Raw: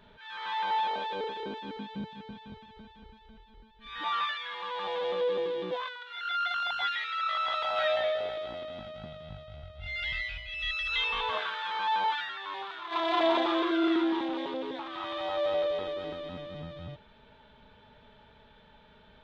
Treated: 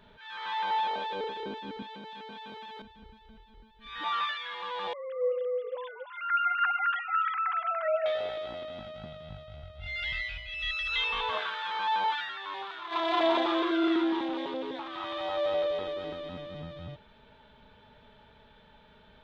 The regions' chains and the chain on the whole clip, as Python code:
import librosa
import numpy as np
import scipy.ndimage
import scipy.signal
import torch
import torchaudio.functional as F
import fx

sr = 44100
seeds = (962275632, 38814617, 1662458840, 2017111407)

y = fx.chain(x, sr, fx.highpass(hz=420.0, slope=12),
    fx.env_flatten(amount_pct=100), at=(1.82, 2.82))
y = fx.chain(y, sr, fx.sine_speech(),
    fx.echo_single(ms=289, db=-6.5), at=(4.93, 8.06))